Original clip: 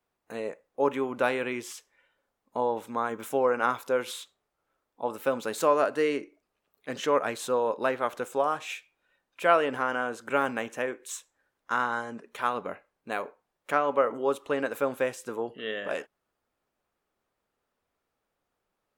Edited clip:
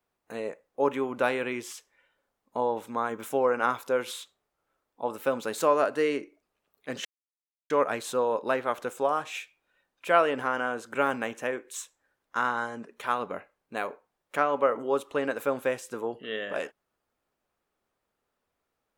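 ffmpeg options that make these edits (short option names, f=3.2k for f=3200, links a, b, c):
-filter_complex "[0:a]asplit=2[a][b];[a]atrim=end=7.05,asetpts=PTS-STARTPTS,afade=t=out:st=7.046:d=0.004:c=hsin,apad=pad_dur=0.65[c];[b]atrim=start=7.05,asetpts=PTS-STARTPTS,afade=t=in:d=0.004:c=hsin[d];[c][d]concat=n=2:v=0:a=1"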